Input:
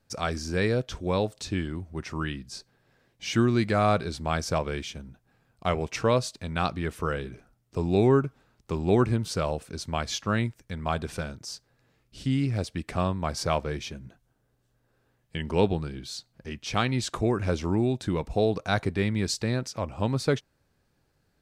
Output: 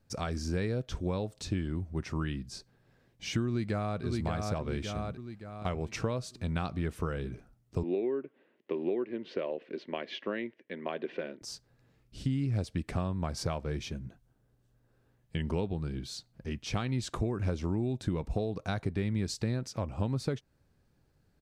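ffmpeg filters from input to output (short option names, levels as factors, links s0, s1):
-filter_complex "[0:a]asplit=2[s0][s1];[s1]afade=t=in:st=3.46:d=0.01,afade=t=out:st=4.03:d=0.01,aecho=0:1:570|1140|1710|2280|2850:0.473151|0.212918|0.0958131|0.0431159|0.0194022[s2];[s0][s2]amix=inputs=2:normalize=0,asettb=1/sr,asplit=3[s3][s4][s5];[s3]atrim=end=7.834[s6];[s4]atrim=start=7.83:end=11.42,asetpts=PTS-STARTPTS,afade=t=in:d=0.004:c=qsin,afade=t=out:st=3.586:d=0.004:c=qsin,highpass=f=260:w=0.5412,highpass=f=260:w=1.3066,equalizer=f=370:t=q:w=4:g=6,equalizer=f=550:t=q:w=4:g=5,equalizer=f=810:t=q:w=4:g=-6,equalizer=f=1300:t=q:w=4:g=-9,equalizer=f=1900:t=q:w=4:g=8,equalizer=f=2900:t=q:w=4:g=5,lowpass=f=3200:w=0.5412,lowpass=f=3200:w=1.3066[s7];[s5]atrim=start=11.416[s8];[s6][s7]acrossfade=d=0.004:c1=hsin:c2=qsin[s9];[s9][s8]acrossfade=d=0.004:c1=qsin:c2=hsin,acompressor=threshold=0.0398:ratio=10,lowshelf=f=390:g=7.5,volume=0.596"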